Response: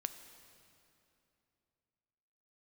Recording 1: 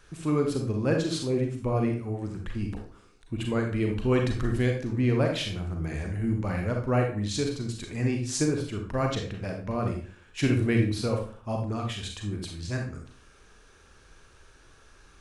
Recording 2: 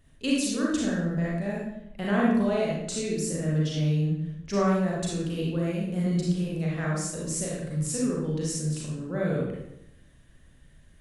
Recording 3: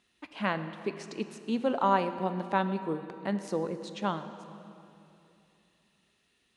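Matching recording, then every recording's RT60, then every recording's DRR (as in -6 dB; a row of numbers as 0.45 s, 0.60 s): 3; 0.45 s, 0.85 s, 2.9 s; 2.0 dB, -5.0 dB, 9.0 dB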